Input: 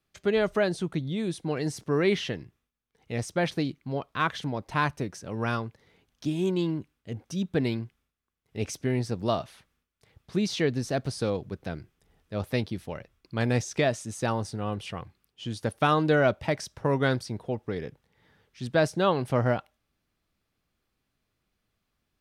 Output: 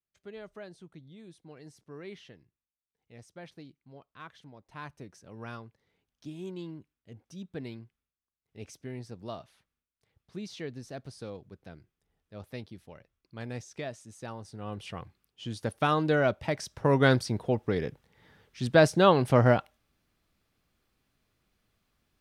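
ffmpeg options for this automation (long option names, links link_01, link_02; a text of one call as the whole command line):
ffmpeg -i in.wav -af "volume=3.5dB,afade=type=in:start_time=4.64:duration=0.49:silence=0.446684,afade=type=in:start_time=14.43:duration=0.56:silence=0.316228,afade=type=in:start_time=16.53:duration=0.59:silence=0.473151" out.wav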